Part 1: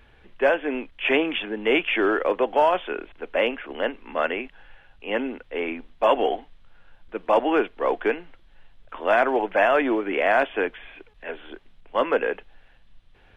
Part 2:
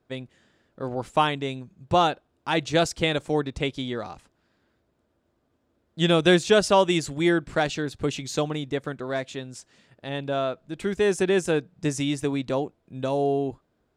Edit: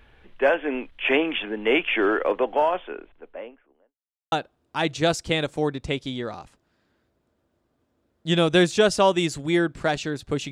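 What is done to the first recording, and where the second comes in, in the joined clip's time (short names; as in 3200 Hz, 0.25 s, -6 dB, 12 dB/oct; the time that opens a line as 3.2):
part 1
2.09–3.97 studio fade out
3.97–4.32 mute
4.32 switch to part 2 from 2.04 s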